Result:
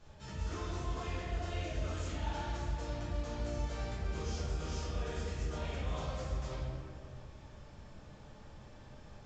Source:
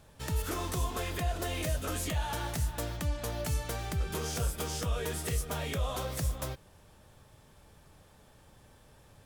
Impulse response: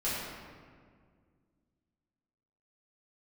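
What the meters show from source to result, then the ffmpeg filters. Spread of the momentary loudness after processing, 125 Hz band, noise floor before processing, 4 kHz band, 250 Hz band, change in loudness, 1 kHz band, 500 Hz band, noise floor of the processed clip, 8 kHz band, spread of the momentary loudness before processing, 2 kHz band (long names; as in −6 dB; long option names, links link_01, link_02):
16 LU, −4.0 dB, −59 dBFS, −7.5 dB, −4.0 dB, −5.0 dB, −5.0 dB, −4.5 dB, −54 dBFS, −13.0 dB, 2 LU, −6.5 dB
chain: -filter_complex "[0:a]areverse,acompressor=threshold=-40dB:ratio=6,areverse[link_01];[1:a]atrim=start_sample=2205[link_02];[link_01][link_02]afir=irnorm=-1:irlink=0,volume=-4.5dB" -ar 16000 -c:a pcm_mulaw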